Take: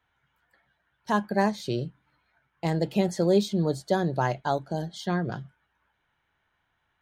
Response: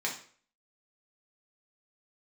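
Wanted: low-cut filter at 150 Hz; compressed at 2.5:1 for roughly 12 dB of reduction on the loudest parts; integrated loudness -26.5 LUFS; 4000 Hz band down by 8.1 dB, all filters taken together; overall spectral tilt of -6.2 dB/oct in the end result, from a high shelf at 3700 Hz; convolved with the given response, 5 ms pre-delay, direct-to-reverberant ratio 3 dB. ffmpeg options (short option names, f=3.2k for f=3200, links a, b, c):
-filter_complex "[0:a]highpass=150,highshelf=f=3.7k:g=-6,equalizer=f=4k:t=o:g=-6,acompressor=threshold=-36dB:ratio=2.5,asplit=2[a][b];[1:a]atrim=start_sample=2205,adelay=5[c];[b][c]afir=irnorm=-1:irlink=0,volume=-9dB[d];[a][d]amix=inputs=2:normalize=0,volume=10dB"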